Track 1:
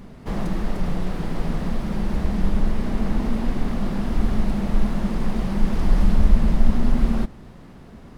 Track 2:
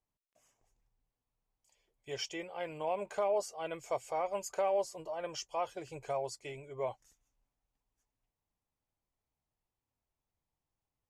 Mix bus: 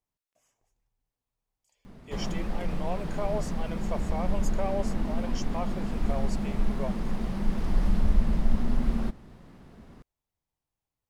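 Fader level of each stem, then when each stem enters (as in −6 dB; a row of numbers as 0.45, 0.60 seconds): −7.0, −0.5 decibels; 1.85, 0.00 seconds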